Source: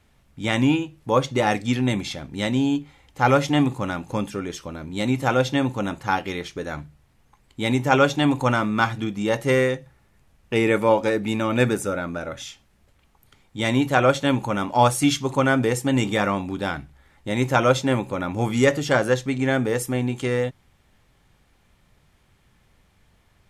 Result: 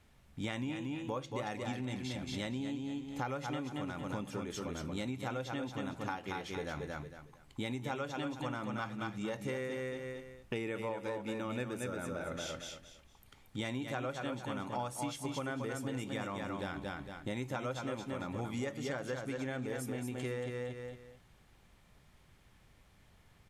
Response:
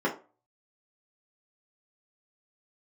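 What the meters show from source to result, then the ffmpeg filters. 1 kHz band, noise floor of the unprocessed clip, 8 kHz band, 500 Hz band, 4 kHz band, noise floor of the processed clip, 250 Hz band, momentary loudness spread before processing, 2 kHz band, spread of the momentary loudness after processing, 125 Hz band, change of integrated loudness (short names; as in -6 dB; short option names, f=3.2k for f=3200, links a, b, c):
-17.5 dB, -61 dBFS, -15.0 dB, -17.0 dB, -15.5 dB, -64 dBFS, -16.0 dB, 12 LU, -17.0 dB, 5 LU, -16.0 dB, -17.0 dB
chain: -af "aecho=1:1:228|456|684:0.531|0.138|0.0359,acompressor=threshold=-31dB:ratio=8,volume=-4.5dB"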